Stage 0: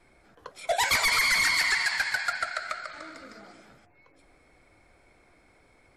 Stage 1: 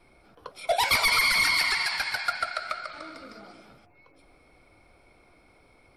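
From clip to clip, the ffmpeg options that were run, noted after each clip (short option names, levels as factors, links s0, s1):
-af "superequalizer=11b=0.447:15b=0.316,volume=1.26"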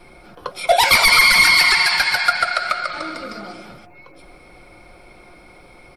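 -filter_complex "[0:a]aecho=1:1:5.6:0.36,asplit=2[s0][s1];[s1]alimiter=limit=0.075:level=0:latency=1:release=106,volume=1.06[s2];[s0][s2]amix=inputs=2:normalize=0,volume=2.11"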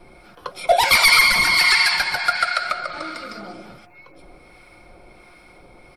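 -filter_complex "[0:a]acrossover=split=1000[s0][s1];[s0]aeval=exprs='val(0)*(1-0.5/2+0.5/2*cos(2*PI*1.4*n/s))':c=same[s2];[s1]aeval=exprs='val(0)*(1-0.5/2-0.5/2*cos(2*PI*1.4*n/s))':c=same[s3];[s2][s3]amix=inputs=2:normalize=0"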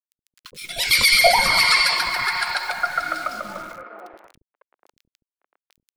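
-filter_complex "[0:a]aeval=exprs='val(0)*gte(abs(val(0)),0.015)':c=same,acrossover=split=350|1800[s0][s1][s2];[s0]adelay=70[s3];[s1]adelay=550[s4];[s3][s4][s2]amix=inputs=3:normalize=0"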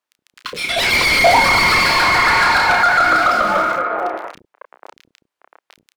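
-filter_complex "[0:a]asplit=2[s0][s1];[s1]adelay=31,volume=0.447[s2];[s0][s2]amix=inputs=2:normalize=0,asplit=2[s3][s4];[s4]highpass=f=720:p=1,volume=31.6,asoftclip=type=tanh:threshold=0.891[s5];[s3][s5]amix=inputs=2:normalize=0,lowpass=f=1200:p=1,volume=0.501"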